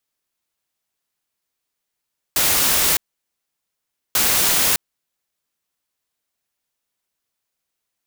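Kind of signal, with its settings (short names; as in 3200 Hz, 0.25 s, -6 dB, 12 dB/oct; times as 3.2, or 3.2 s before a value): noise bursts white, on 0.61 s, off 1.18 s, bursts 2, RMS -17 dBFS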